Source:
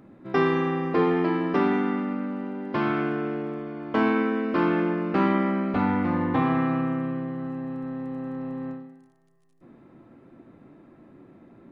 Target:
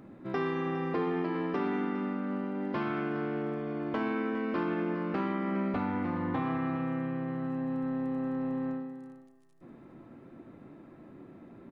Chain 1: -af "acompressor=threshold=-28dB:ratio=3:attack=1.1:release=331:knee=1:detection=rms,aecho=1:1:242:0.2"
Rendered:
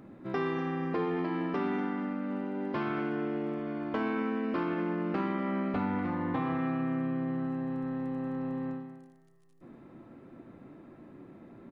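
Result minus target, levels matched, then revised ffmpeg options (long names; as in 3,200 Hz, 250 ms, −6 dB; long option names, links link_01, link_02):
echo 167 ms early
-af "acompressor=threshold=-28dB:ratio=3:attack=1.1:release=331:knee=1:detection=rms,aecho=1:1:409:0.2"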